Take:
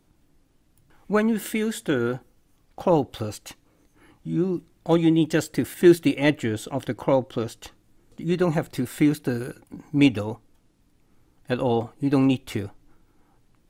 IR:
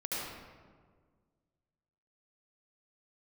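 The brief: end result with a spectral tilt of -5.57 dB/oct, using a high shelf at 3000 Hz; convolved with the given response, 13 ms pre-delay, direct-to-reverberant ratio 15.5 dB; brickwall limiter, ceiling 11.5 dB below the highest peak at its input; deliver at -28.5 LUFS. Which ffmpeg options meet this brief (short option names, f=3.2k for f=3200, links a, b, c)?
-filter_complex "[0:a]highshelf=f=3k:g=4.5,alimiter=limit=-15.5dB:level=0:latency=1,asplit=2[a][b];[1:a]atrim=start_sample=2205,adelay=13[c];[b][c]afir=irnorm=-1:irlink=0,volume=-20dB[d];[a][d]amix=inputs=2:normalize=0,volume=-1.5dB"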